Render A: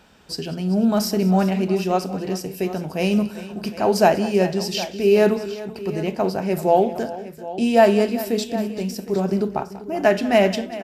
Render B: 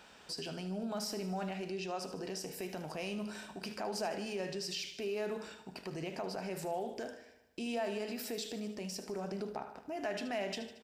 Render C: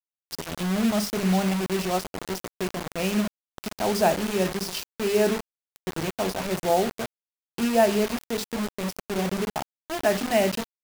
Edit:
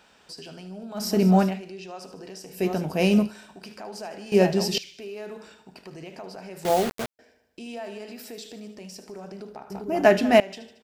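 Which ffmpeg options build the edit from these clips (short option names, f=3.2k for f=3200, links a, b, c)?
-filter_complex "[0:a]asplit=4[a][b][c][d];[1:a]asplit=6[e][f][g][h][i][j];[e]atrim=end=1.18[k];[a]atrim=start=0.94:end=1.61[l];[f]atrim=start=1.37:end=2.66[m];[b]atrim=start=2.5:end=3.35[n];[g]atrim=start=3.19:end=4.322[o];[c]atrim=start=4.318:end=4.782[p];[h]atrim=start=4.778:end=6.652[q];[2:a]atrim=start=6.648:end=7.192[r];[i]atrim=start=7.188:end=9.702[s];[d]atrim=start=9.698:end=10.402[t];[j]atrim=start=10.398[u];[k][l]acrossfade=d=0.24:c1=tri:c2=tri[v];[v][m]acrossfade=d=0.24:c1=tri:c2=tri[w];[w][n]acrossfade=d=0.16:c1=tri:c2=tri[x];[x][o]acrossfade=d=0.16:c1=tri:c2=tri[y];[y][p]acrossfade=d=0.004:c1=hsin:c2=hsin[z];[z][q]acrossfade=d=0.004:c1=hsin:c2=hsin[aa];[aa][r]acrossfade=d=0.004:c1=hsin:c2=hsin[ab];[ab][s]acrossfade=d=0.004:c1=hsin:c2=hsin[ac];[ac][t]acrossfade=d=0.004:c1=hsin:c2=hsin[ad];[ad][u]acrossfade=d=0.004:c1=hsin:c2=hsin"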